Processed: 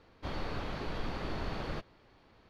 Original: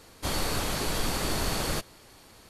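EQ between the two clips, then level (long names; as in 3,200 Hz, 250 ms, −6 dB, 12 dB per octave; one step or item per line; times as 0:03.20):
high-frequency loss of the air 280 metres
−6.5 dB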